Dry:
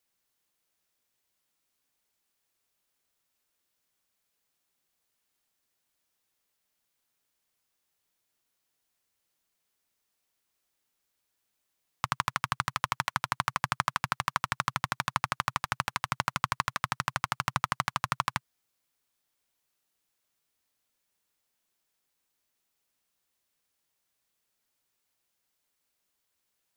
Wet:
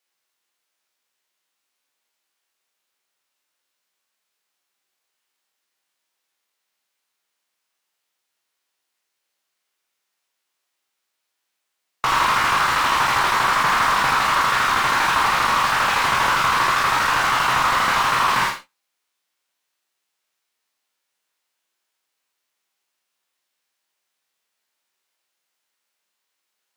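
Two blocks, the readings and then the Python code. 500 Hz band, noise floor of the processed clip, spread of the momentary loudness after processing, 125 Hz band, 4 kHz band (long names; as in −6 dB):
+16.0 dB, −78 dBFS, 1 LU, +3.5 dB, +14.0 dB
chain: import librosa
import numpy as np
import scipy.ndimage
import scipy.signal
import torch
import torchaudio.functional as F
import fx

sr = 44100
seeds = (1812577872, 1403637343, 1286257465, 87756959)

p1 = fx.spec_trails(x, sr, decay_s=0.33)
p2 = fx.highpass(p1, sr, hz=730.0, slope=6)
p3 = fx.high_shelf(p2, sr, hz=7000.0, db=-9.0)
p4 = fx.fuzz(p3, sr, gain_db=47.0, gate_db=-54.0)
p5 = p3 + (p4 * librosa.db_to_amplitude(-12.0))
p6 = fx.room_early_taps(p5, sr, ms=(45, 60), db=(-8.5, -17.5))
p7 = fx.rev_gated(p6, sr, seeds[0], gate_ms=90, shape='rising', drr_db=6.5)
p8 = fx.slew_limit(p7, sr, full_power_hz=180.0)
y = p8 * librosa.db_to_amplitude(4.5)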